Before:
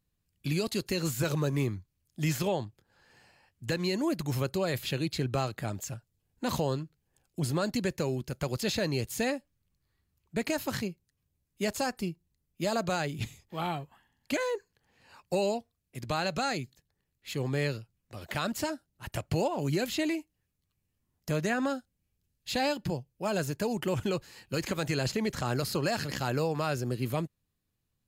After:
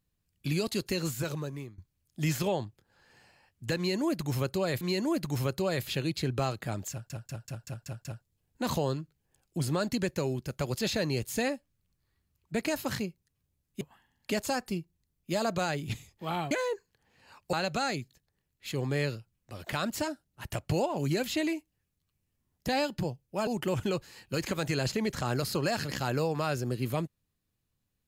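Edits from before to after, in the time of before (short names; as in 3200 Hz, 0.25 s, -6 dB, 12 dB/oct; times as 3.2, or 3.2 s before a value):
0.91–1.78 fade out linear, to -22.5 dB
3.77–4.81 loop, 2 plays
5.87 stutter 0.19 s, 7 plays
13.82–14.33 move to 11.63
15.35–16.15 cut
21.3–22.55 cut
23.34–23.67 cut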